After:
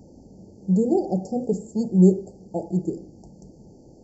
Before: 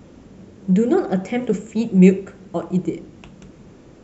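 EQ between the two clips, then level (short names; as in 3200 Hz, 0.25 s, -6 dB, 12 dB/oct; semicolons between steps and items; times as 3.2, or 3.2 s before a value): brick-wall FIR band-stop 920–4300 Hz; -3.5 dB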